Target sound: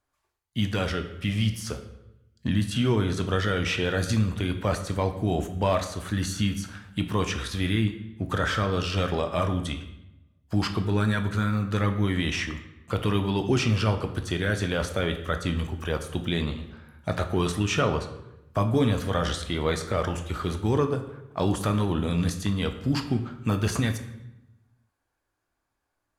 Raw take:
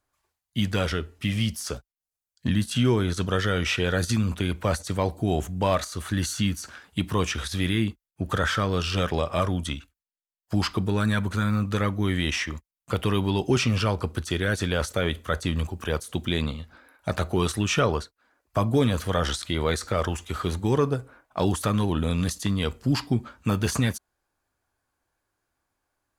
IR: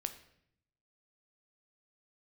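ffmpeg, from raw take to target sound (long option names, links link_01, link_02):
-filter_complex "[0:a]highshelf=frequency=6300:gain=-4.5[link_01];[1:a]atrim=start_sample=2205,asetrate=33516,aresample=44100[link_02];[link_01][link_02]afir=irnorm=-1:irlink=0,volume=-1.5dB"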